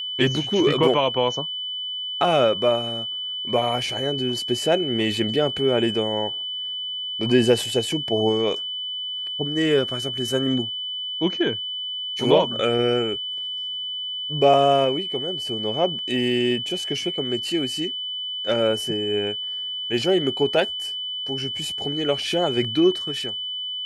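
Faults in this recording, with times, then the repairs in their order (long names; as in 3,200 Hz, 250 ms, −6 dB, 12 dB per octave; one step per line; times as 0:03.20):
whistle 3,000 Hz −27 dBFS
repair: notch filter 3,000 Hz, Q 30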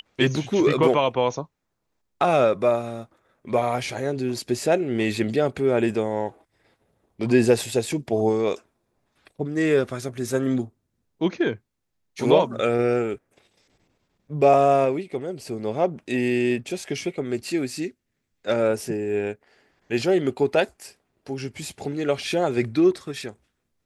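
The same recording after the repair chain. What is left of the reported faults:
none of them is left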